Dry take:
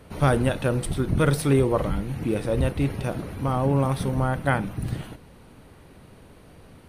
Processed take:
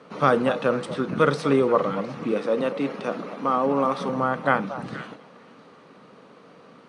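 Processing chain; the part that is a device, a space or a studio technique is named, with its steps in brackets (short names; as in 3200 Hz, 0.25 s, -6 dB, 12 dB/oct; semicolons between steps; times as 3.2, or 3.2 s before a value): 2.32–4.09 HPF 170 Hz 24 dB/oct; television speaker (speaker cabinet 190–6600 Hz, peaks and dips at 340 Hz -4 dB, 480 Hz +5 dB, 1200 Hz +10 dB); low shelf 240 Hz +3.5 dB; delay with a stepping band-pass 0.236 s, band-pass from 730 Hz, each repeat 1.4 oct, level -9.5 dB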